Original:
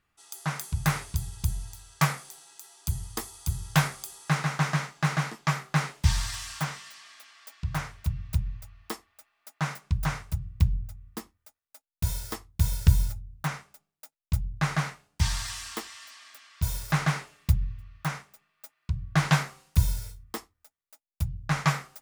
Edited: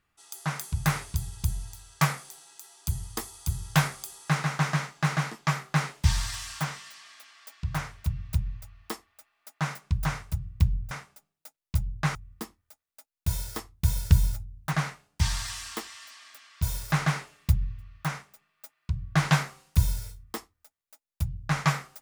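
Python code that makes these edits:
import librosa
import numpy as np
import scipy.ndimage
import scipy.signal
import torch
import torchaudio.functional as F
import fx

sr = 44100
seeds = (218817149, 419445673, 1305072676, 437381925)

y = fx.edit(x, sr, fx.move(start_s=13.49, length_s=1.24, to_s=10.91), tone=tone)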